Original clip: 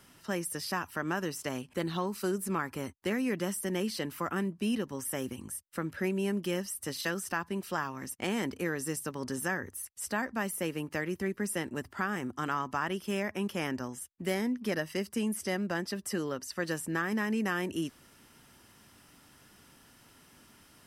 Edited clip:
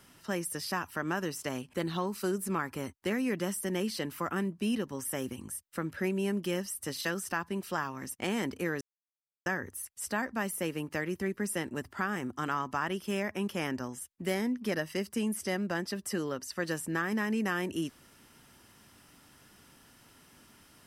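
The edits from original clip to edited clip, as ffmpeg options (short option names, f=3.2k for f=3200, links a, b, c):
-filter_complex "[0:a]asplit=3[a][b][c];[a]atrim=end=8.81,asetpts=PTS-STARTPTS,afade=t=out:st=8.806:d=0.004:c=hsin[d];[b]atrim=start=8.81:end=9.46,asetpts=PTS-STARTPTS,volume=0[e];[c]atrim=start=9.46,asetpts=PTS-STARTPTS,afade=t=in:d=0.004:c=hsin[f];[d][e][f]concat=n=3:v=0:a=1"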